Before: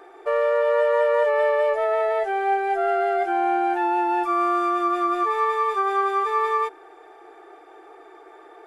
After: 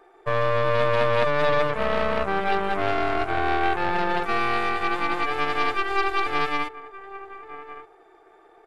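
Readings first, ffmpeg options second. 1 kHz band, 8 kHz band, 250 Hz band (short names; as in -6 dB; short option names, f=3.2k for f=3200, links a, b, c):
-3.0 dB, n/a, -1.5 dB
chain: -filter_complex "[0:a]asplit=2[a][b];[b]adelay=1166,volume=-9dB,highshelf=f=4k:g=-26.2[c];[a][c]amix=inputs=2:normalize=0,aeval=exprs='0.299*(cos(1*acos(clip(val(0)/0.299,-1,1)))-cos(1*PI/2))+0.106*(cos(2*acos(clip(val(0)/0.299,-1,1)))-cos(2*PI/2))+0.0596*(cos(3*acos(clip(val(0)/0.299,-1,1)))-cos(3*PI/2))+0.106*(cos(4*acos(clip(val(0)/0.299,-1,1)))-cos(4*PI/2))':c=same"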